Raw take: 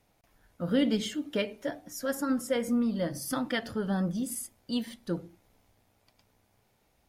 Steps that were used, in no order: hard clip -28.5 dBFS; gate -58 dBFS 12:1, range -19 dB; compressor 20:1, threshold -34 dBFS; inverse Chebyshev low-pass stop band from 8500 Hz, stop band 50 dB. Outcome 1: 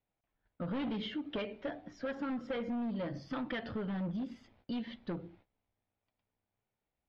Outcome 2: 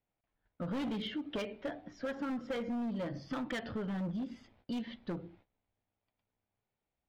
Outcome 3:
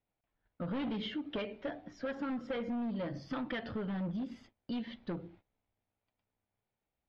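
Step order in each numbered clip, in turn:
gate > hard clip > compressor > inverse Chebyshev low-pass; gate > inverse Chebyshev low-pass > hard clip > compressor; hard clip > inverse Chebyshev low-pass > compressor > gate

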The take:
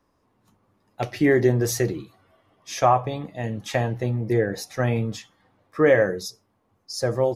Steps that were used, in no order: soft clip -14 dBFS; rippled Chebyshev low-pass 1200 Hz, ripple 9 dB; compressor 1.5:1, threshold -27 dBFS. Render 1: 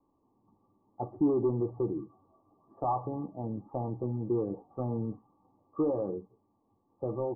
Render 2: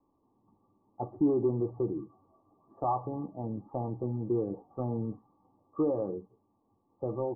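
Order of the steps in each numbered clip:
soft clip > compressor > rippled Chebyshev low-pass; compressor > soft clip > rippled Chebyshev low-pass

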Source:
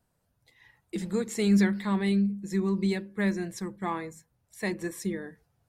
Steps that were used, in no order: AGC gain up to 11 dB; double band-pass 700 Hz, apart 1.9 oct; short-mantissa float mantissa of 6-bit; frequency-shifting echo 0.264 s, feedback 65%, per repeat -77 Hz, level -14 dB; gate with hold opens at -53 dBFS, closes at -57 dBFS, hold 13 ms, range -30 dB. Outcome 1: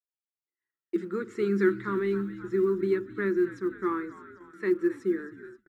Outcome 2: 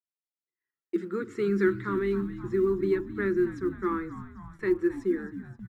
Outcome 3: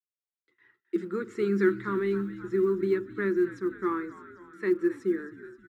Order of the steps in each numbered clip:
frequency-shifting echo > double band-pass > gate with hold > AGC > short-mantissa float; double band-pass > frequency-shifting echo > gate with hold > AGC > short-mantissa float; gate with hold > frequency-shifting echo > double band-pass > short-mantissa float > AGC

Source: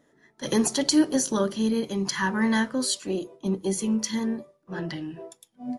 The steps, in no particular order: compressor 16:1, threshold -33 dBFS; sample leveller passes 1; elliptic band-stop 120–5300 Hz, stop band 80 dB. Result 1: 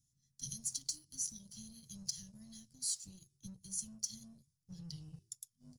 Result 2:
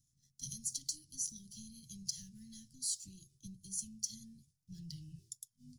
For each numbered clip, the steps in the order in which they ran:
compressor > elliptic band-stop > sample leveller; compressor > sample leveller > elliptic band-stop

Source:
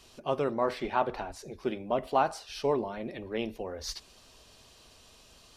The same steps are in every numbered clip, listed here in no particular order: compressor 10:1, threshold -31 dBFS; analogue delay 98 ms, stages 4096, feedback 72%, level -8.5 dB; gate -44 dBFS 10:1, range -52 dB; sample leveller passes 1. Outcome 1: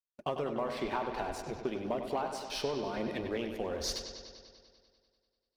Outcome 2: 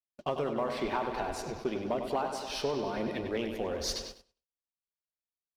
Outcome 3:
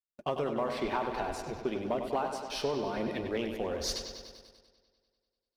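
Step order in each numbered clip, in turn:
gate > sample leveller > compressor > analogue delay; compressor > analogue delay > gate > sample leveller; compressor > gate > analogue delay > sample leveller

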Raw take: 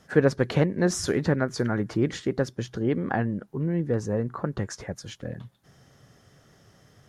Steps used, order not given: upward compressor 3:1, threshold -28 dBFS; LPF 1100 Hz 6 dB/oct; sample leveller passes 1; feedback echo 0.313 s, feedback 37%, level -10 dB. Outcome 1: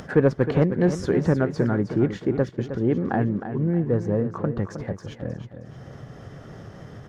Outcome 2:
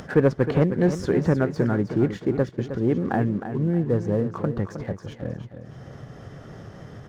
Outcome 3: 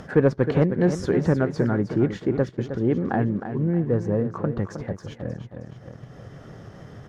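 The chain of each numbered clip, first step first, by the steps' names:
sample leveller > LPF > upward compressor > feedback echo; LPF > sample leveller > upward compressor > feedback echo; feedback echo > sample leveller > upward compressor > LPF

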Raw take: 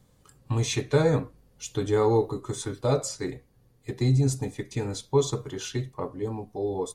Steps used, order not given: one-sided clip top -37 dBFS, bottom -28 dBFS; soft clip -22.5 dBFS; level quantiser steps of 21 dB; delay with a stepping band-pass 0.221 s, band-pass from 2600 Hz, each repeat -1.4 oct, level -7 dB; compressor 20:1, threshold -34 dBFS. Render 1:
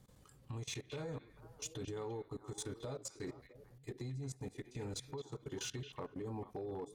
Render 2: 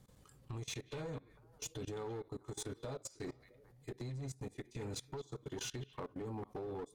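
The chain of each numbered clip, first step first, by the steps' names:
compressor > soft clip > level quantiser > delay with a stepping band-pass > one-sided clip; compressor > delay with a stepping band-pass > one-sided clip > level quantiser > soft clip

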